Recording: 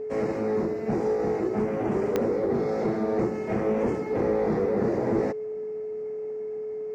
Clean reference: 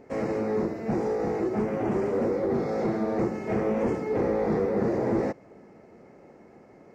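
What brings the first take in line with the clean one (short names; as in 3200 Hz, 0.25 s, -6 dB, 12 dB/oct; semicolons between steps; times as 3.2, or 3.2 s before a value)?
de-click; notch 430 Hz, Q 30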